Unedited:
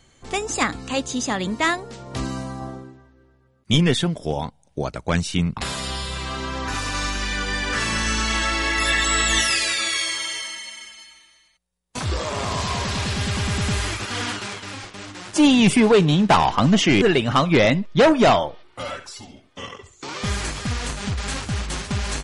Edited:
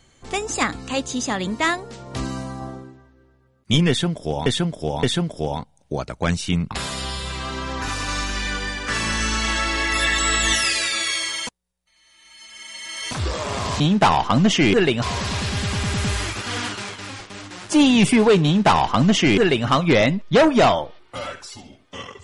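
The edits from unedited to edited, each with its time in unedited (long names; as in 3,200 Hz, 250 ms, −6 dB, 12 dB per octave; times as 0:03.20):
0:03.89–0:04.46: repeat, 3 plays
0:07.37–0:07.74: fade out, to −6 dB
0:10.33–0:11.97: reverse
0:16.08–0:17.30: duplicate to 0:12.66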